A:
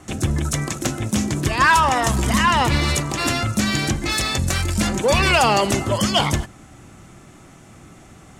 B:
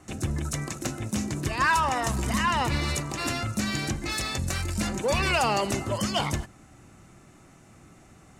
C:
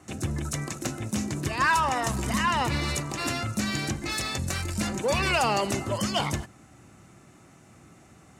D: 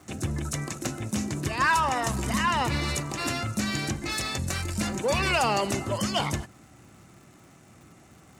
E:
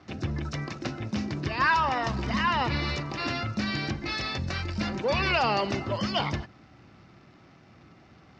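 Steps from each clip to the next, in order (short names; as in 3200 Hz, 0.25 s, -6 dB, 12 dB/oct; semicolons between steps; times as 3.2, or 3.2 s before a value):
notch 3300 Hz, Q 11; gain -8 dB
HPF 67 Hz
crackle 190/s -47 dBFS
elliptic low-pass 5100 Hz, stop band 80 dB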